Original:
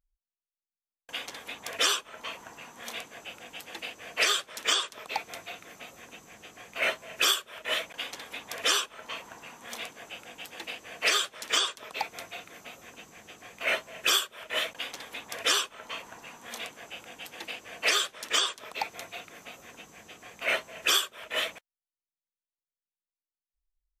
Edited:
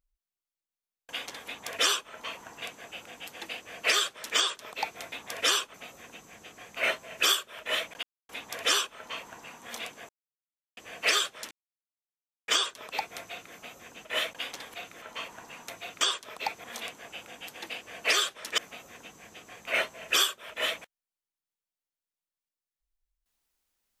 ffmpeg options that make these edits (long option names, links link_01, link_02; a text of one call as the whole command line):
ffmpeg -i in.wav -filter_complex "[0:a]asplit=16[link_01][link_02][link_03][link_04][link_05][link_06][link_07][link_08][link_09][link_10][link_11][link_12][link_13][link_14][link_15][link_16];[link_01]atrim=end=2.622[link_17];[link_02]atrim=start=2.948:end=5.452[link_18];[link_03]atrim=start=15.138:end=15.762[link_19];[link_04]atrim=start=5.728:end=8.02,asetpts=PTS-STARTPTS,afade=type=out:start_time=2.288:duration=0.004:curve=hsin[link_20];[link_05]atrim=start=8.02:end=8.28,asetpts=PTS-STARTPTS,volume=0[link_21];[link_06]atrim=start=8.28:end=10.08,asetpts=PTS-STARTPTS,afade=type=in:duration=0.004:curve=hsin,afade=type=out:start_time=1.796:duration=0.004:curve=hsin[link_22];[link_07]atrim=start=10.08:end=10.76,asetpts=PTS-STARTPTS,volume=0[link_23];[link_08]atrim=start=10.76:end=11.5,asetpts=PTS-STARTPTS,afade=type=in:duration=0.004:curve=hsin,afade=type=out:start_time=0.736:duration=0.004:curve=hsin,apad=pad_dur=0.97[link_24];[link_09]atrim=start=11.5:end=13.072,asetpts=PTS-STARTPTS,afade=type=in:duration=0.004:curve=hsin[link_25];[link_10]atrim=start=14.448:end=15.142[link_26];[link_11]atrim=start=5.448:end=5.732[link_27];[link_12]atrim=start=15.758:end=16.422[link_28];[link_13]atrim=start=18.988:end=19.322[link_29];[link_14]atrim=start=18.358:end=18.992[link_30];[link_15]atrim=start=16.418:end=18.362[link_31];[link_16]atrim=start=19.318[link_32];[link_17][link_18]acrossfade=duration=0.004:curve1=hsin:curve2=hsin[link_33];[link_33][link_19]acrossfade=duration=0.004:curve1=hsin:curve2=hsin[link_34];[link_20][link_21][link_22][link_23][link_24][link_25]concat=n=6:v=0:a=1[link_35];[link_34][link_35]acrossfade=duration=0.004:curve1=hsin:curve2=hsin[link_36];[link_36][link_26]acrossfade=duration=0.004:curve1=hsin:curve2=hsin[link_37];[link_37][link_27]acrossfade=duration=0.004:curve1=hsin:curve2=hsin[link_38];[link_38][link_28]acrossfade=duration=0.004:curve1=hsin:curve2=hsin[link_39];[link_39][link_29]acrossfade=duration=0.004:curve1=hsin:curve2=hsin[link_40];[link_40][link_30]acrossfade=duration=0.004:curve1=hsin:curve2=hsin[link_41];[link_41][link_31]acrossfade=duration=0.004:curve1=hsin:curve2=hsin[link_42];[link_42][link_32]acrossfade=duration=0.004:curve1=hsin:curve2=hsin" out.wav